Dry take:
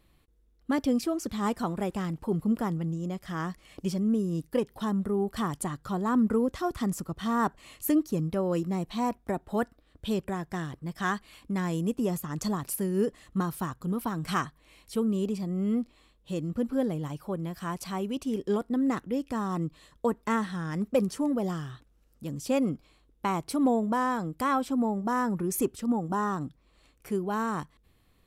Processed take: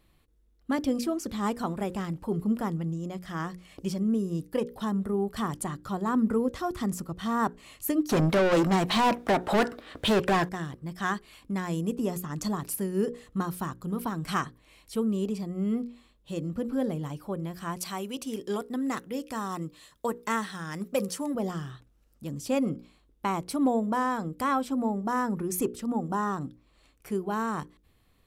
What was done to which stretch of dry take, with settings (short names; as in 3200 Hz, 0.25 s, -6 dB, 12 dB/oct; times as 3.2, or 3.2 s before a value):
8.09–10.49 overdrive pedal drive 31 dB, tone 3100 Hz, clips at -15 dBFS
17.79–21.35 tilt +2 dB/oct
whole clip: notches 60/120/180/240/300/360/420/480/540 Hz